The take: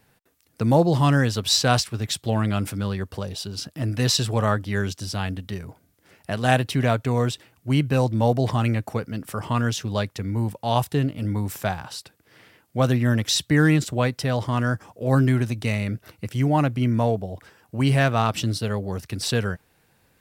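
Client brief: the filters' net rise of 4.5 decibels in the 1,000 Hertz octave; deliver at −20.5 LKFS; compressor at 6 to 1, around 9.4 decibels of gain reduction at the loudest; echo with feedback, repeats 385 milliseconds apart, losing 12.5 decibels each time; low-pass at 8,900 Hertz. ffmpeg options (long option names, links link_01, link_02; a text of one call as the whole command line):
ffmpeg -i in.wav -af "lowpass=8900,equalizer=frequency=1000:width_type=o:gain=6,acompressor=threshold=-21dB:ratio=6,aecho=1:1:385|770|1155:0.237|0.0569|0.0137,volume=7dB" out.wav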